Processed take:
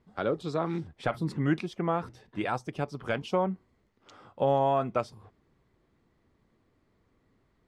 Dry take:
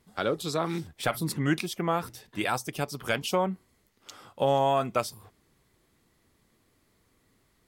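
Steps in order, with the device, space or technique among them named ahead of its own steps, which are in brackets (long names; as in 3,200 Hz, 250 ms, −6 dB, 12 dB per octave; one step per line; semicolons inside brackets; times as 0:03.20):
through cloth (low-pass filter 6,900 Hz 12 dB per octave; high-shelf EQ 2,600 Hz −14.5 dB)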